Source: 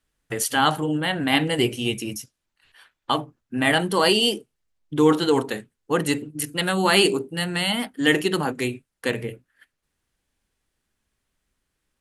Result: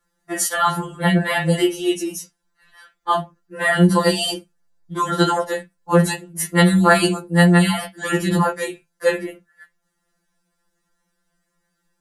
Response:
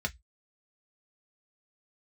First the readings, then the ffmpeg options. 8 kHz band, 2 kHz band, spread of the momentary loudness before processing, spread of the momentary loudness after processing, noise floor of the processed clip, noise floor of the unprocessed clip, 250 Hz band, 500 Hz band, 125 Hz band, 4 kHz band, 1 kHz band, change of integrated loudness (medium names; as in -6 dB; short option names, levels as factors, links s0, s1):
+4.0 dB, +3.0 dB, 14 LU, 15 LU, -73 dBFS, -80 dBFS, +5.0 dB, +2.5 dB, +10.0 dB, -3.0 dB, +4.5 dB, +3.5 dB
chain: -filter_complex "[0:a]asplit=2[s0][s1];[s1]highpass=f=120:w=0.5412,highpass=f=120:w=1.3066[s2];[1:a]atrim=start_sample=2205,lowpass=5900[s3];[s2][s3]afir=irnorm=-1:irlink=0,volume=0.75[s4];[s0][s4]amix=inputs=2:normalize=0,alimiter=level_in=2.51:limit=0.891:release=50:level=0:latency=1,afftfilt=real='re*2.83*eq(mod(b,8),0)':imag='im*2.83*eq(mod(b,8),0)':win_size=2048:overlap=0.75,volume=0.75"